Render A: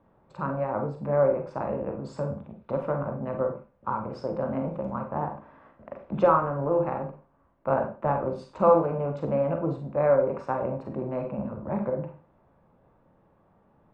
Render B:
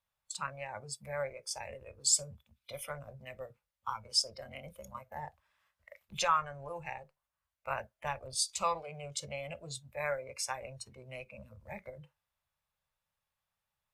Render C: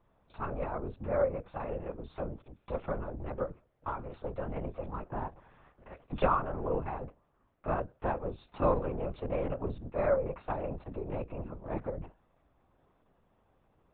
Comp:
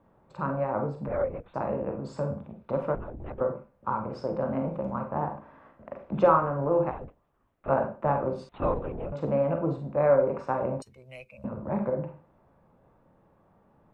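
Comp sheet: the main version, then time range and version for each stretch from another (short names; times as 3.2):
A
1.08–1.54 from C
2.95–3.41 from C
6.91–7.69 from C
8.49–9.12 from C
10.82–11.44 from B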